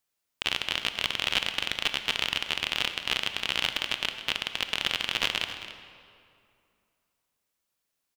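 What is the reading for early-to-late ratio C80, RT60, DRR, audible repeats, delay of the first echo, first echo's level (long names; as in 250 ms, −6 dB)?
8.5 dB, 2.6 s, 7.0 dB, 1, 269 ms, −13.5 dB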